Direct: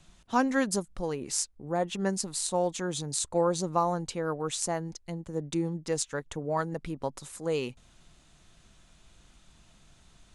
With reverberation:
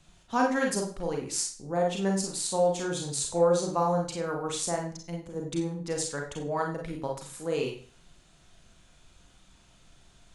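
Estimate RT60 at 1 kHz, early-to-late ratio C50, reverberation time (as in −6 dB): 0.45 s, 7.5 dB, 0.45 s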